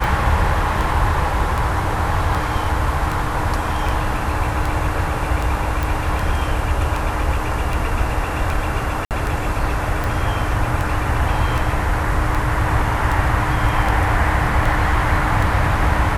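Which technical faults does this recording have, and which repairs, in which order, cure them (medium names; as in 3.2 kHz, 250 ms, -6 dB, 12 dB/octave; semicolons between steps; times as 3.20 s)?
tick 78 rpm
5.83 s: pop
9.05–9.11 s: dropout 58 ms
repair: de-click; interpolate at 9.05 s, 58 ms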